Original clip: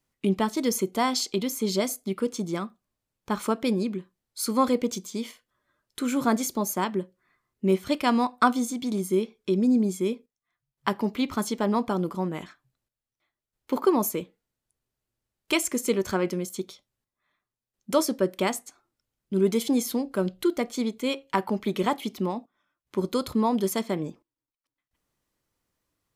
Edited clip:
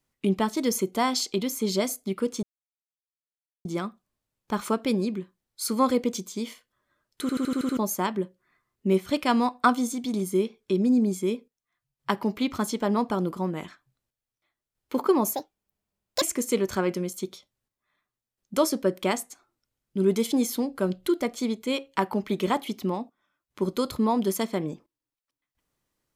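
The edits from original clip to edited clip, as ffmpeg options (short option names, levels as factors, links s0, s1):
-filter_complex "[0:a]asplit=11[s0][s1][s2][s3][s4][s5][s6][s7][s8][s9][s10];[s0]atrim=end=2.43,asetpts=PTS-STARTPTS,afade=t=out:st=2.426:d=0.004:c=hsin,apad=pad_dur=1.22[s11];[s1]atrim=start=2.43:end=6.072,asetpts=PTS-STARTPTS,afade=t=in:d=0.004:c=hsin[s12];[s2]atrim=start=5.988:end=6.072[s13];[s3]atrim=start=5.988:end=6.072[s14];[s4]atrim=start=5.988:end=6.072[s15];[s5]atrim=start=5.988:end=6.072[s16];[s6]atrim=start=5.988:end=6.072[s17];[s7]atrim=start=5.988:end=6.072[s18];[s8]atrim=start=6.548:end=14.134[s19];[s9]atrim=start=14.13:end=15.58,asetpts=PTS-STARTPTS,asetrate=73647,aresample=44100,atrim=end_sample=38290,asetpts=PTS-STARTPTS[s20];[s10]atrim=start=15.576[s21];[s11][s12]concat=n=2:v=0:a=1[s22];[s22][s13]acrossfade=d=0.004:c1=hsin:c2=hsin[s23];[s23][s14]acrossfade=d=0.004:c1=hsin:c2=hsin[s24];[s24][s15]acrossfade=d=0.004:c1=hsin:c2=hsin[s25];[s25][s16]acrossfade=d=0.004:c1=hsin:c2=hsin[s26];[s26][s17]acrossfade=d=0.004:c1=hsin:c2=hsin[s27];[s27][s18]acrossfade=d=0.004:c1=hsin:c2=hsin[s28];[s28][s19]acrossfade=d=0.004:c1=hsin:c2=hsin[s29];[s29][s20]acrossfade=d=0.004:c1=hsin:c2=hsin[s30];[s30][s21]acrossfade=d=0.004:c1=hsin:c2=hsin"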